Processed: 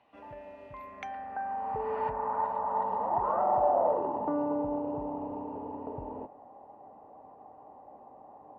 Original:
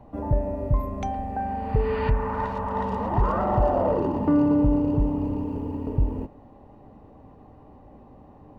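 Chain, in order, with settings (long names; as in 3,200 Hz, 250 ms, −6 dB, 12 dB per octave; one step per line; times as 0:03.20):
band-pass filter sweep 2,800 Hz → 770 Hz, 0:00.66–0:01.92
in parallel at −2.5 dB: downward compressor, threshold −41 dBFS, peak gain reduction 17.5 dB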